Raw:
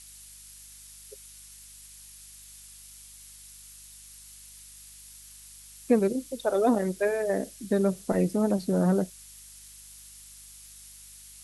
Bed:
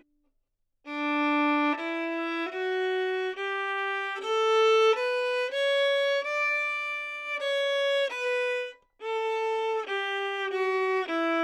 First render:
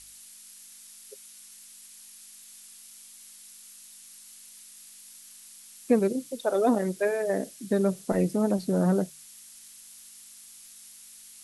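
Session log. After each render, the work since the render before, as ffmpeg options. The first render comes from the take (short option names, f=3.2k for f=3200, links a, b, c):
-af "bandreject=f=50:t=h:w=4,bandreject=f=100:t=h:w=4,bandreject=f=150:t=h:w=4"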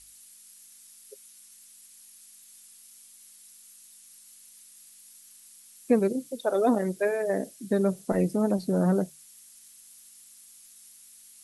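-af "afftdn=nr=6:nf=-50"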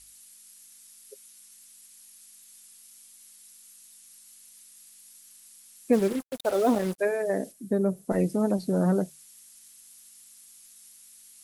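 -filter_complex "[0:a]asplit=3[a][b][c];[a]afade=t=out:st=5.92:d=0.02[d];[b]acrusher=bits=5:mix=0:aa=0.5,afade=t=in:st=5.92:d=0.02,afade=t=out:st=6.98:d=0.02[e];[c]afade=t=in:st=6.98:d=0.02[f];[d][e][f]amix=inputs=3:normalize=0,asplit=3[g][h][i];[g]afade=t=out:st=7.51:d=0.02[j];[h]equalizer=f=4k:t=o:w=2.8:g=-11,afade=t=in:st=7.51:d=0.02,afade=t=out:st=8.1:d=0.02[k];[i]afade=t=in:st=8.1:d=0.02[l];[j][k][l]amix=inputs=3:normalize=0"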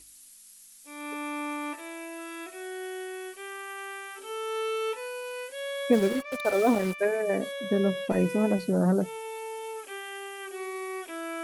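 -filter_complex "[1:a]volume=-9dB[a];[0:a][a]amix=inputs=2:normalize=0"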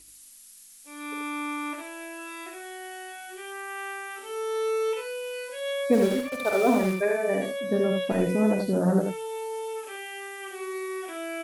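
-af "aecho=1:1:47|79:0.376|0.596"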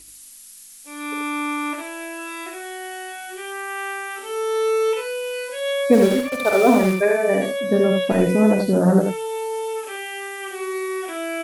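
-af "volume=7dB"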